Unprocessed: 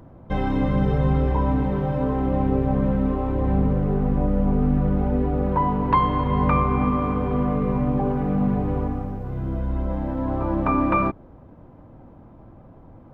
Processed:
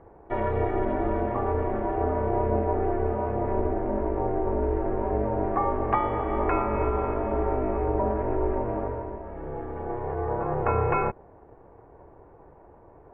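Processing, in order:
loudspeaker in its box 230–2,100 Hz, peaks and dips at 340 Hz −5 dB, 730 Hz +3 dB, 1,100 Hz −9 dB
ring modulation 180 Hz
level +3.5 dB

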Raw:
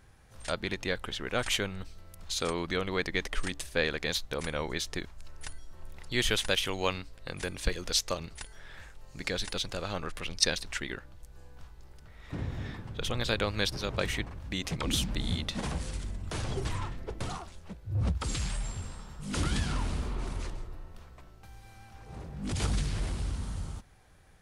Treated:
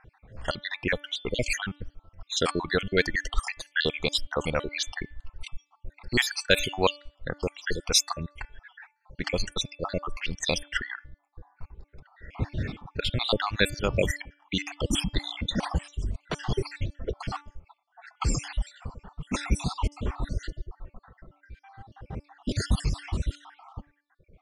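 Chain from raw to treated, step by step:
time-frequency cells dropped at random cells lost 61%
low-pass that shuts in the quiet parts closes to 1,900 Hz, open at −27.5 dBFS
reverb reduction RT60 1.9 s
hum removal 291.9 Hz, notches 12
level +9 dB

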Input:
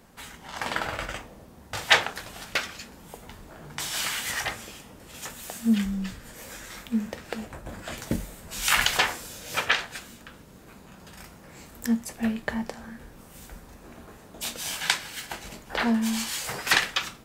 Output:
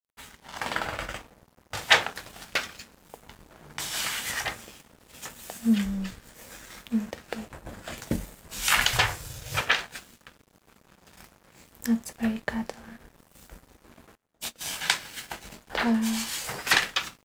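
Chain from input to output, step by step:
0:08.93–0:09.61: low shelf with overshoot 160 Hz +9.5 dB, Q 3
dead-zone distortion −47 dBFS
0:14.15–0:14.61: expander for the loud parts 2.5 to 1, over −45 dBFS

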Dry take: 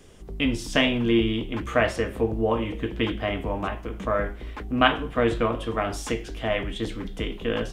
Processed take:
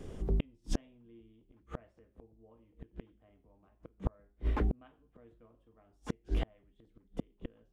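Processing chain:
tilt shelving filter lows +7 dB, about 1,100 Hz
gate with flip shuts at −19 dBFS, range −42 dB

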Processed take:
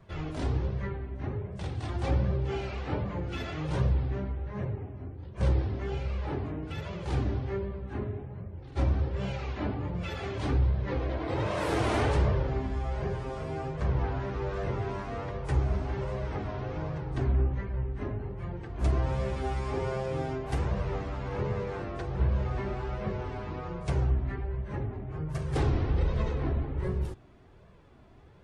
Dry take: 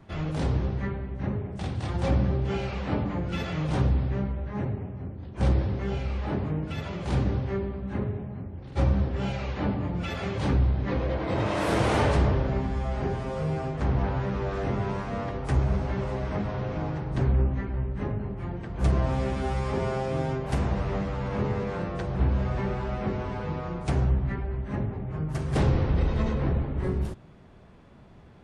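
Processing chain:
flanger 1.3 Hz, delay 1.7 ms, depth 1.4 ms, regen −30%

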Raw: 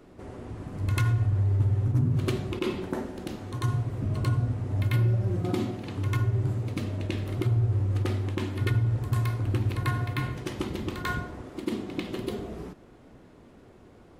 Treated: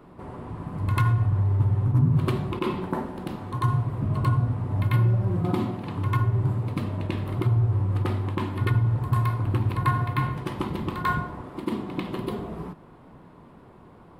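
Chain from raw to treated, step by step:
graphic EQ with 15 bands 160 Hz +8 dB, 1,000 Hz +11 dB, 6,300 Hz −10 dB

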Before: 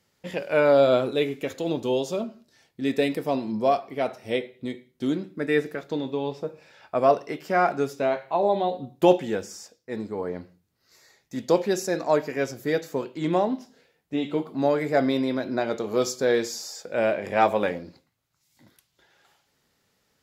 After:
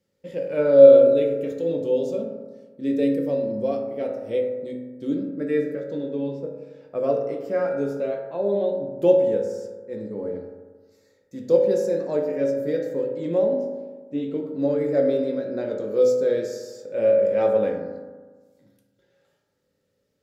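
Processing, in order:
low shelf with overshoot 640 Hz +6 dB, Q 3
convolution reverb RT60 1.4 s, pre-delay 3 ms, DRR 0.5 dB
level −11.5 dB

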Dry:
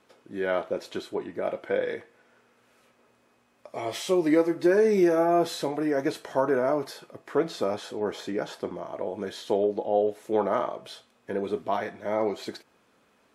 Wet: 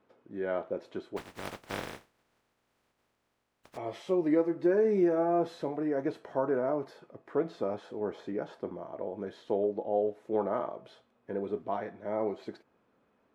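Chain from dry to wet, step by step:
0:01.16–0:03.76: compressing power law on the bin magnitudes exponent 0.13
low-pass filter 1,000 Hz 6 dB per octave
level −4 dB

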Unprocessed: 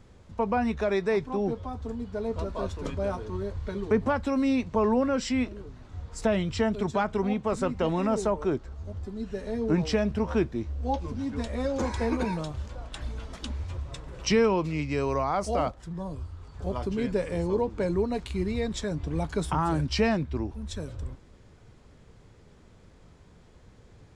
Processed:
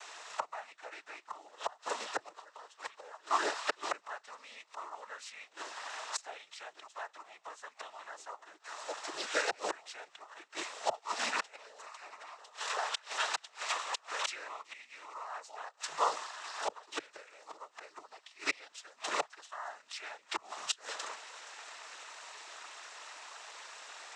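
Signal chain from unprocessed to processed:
variable-slope delta modulation 64 kbit/s
high-pass filter 830 Hz 24 dB per octave
gate with flip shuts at −35 dBFS, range −29 dB
cochlear-implant simulation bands 12
level +17.5 dB

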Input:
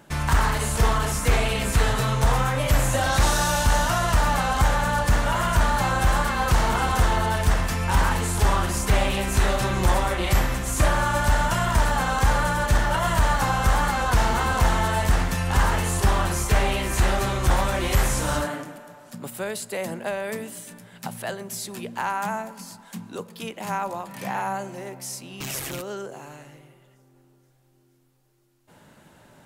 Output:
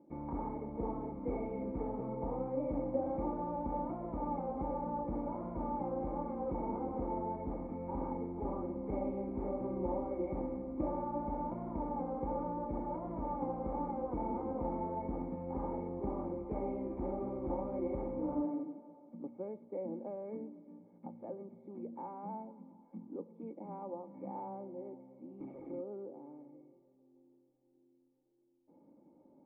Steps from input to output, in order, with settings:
formant resonators in series u
low shelf with overshoot 160 Hz −7 dB, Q 1.5
hollow resonant body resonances 530/1,200/2,200 Hz, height 14 dB, ringing for 45 ms
level −2.5 dB

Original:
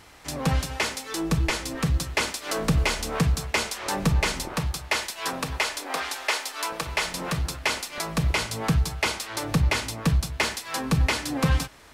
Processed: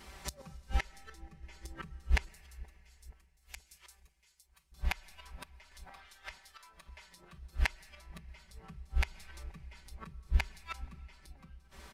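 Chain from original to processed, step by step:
sub-octave generator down 1 octave, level −1 dB
downward compressor 3 to 1, threshold −29 dBFS, peak gain reduction 11.5 dB
noise reduction from a noise print of the clip's start 8 dB
gate with flip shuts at −28 dBFS, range −31 dB
0:02.24–0:04.72: first-order pre-emphasis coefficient 0.97
automatic gain control gain up to 3.5 dB
parametric band 65 Hz +10.5 dB 0.9 octaves
comb filter 5.2 ms, depth 96%
delay with a low-pass on its return 477 ms, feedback 53%, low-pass 650 Hz, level −16 dB
comb and all-pass reverb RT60 3.1 s, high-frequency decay 0.95×, pre-delay 85 ms, DRR 18.5 dB
sample-and-hold tremolo
level +3.5 dB

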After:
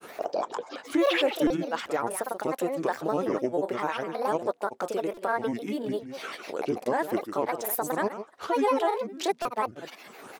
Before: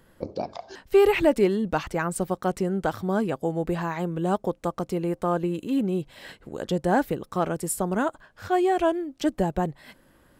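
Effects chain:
Chebyshev high-pass filter 450 Hz, order 2
brickwall limiter −17.5 dBFS, peak gain reduction 7 dB
single-tap delay 164 ms −11 dB
upward compression, threshold −31 dBFS
granular cloud, spray 33 ms, pitch spread up and down by 7 semitones
buffer that repeats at 0:01.47/0:05.14/0:09.42, samples 128, times 10
level +2.5 dB

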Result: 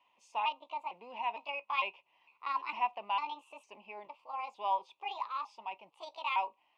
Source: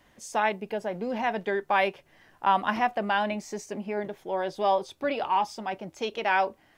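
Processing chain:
pitch shifter gated in a rhythm +6 semitones, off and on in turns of 454 ms
pair of resonant band-passes 1,600 Hz, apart 1.4 octaves

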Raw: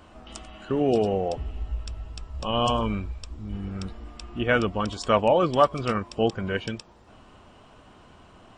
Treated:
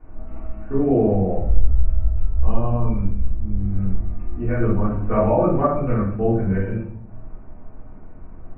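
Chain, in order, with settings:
Butterworth low-pass 2,400 Hz 72 dB per octave
spectral tilt −3 dB per octave
0:02.53–0:04.59: downward compressor, threshold −19 dBFS, peak gain reduction 7 dB
rectangular room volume 97 cubic metres, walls mixed, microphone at 3.3 metres
level −13.5 dB

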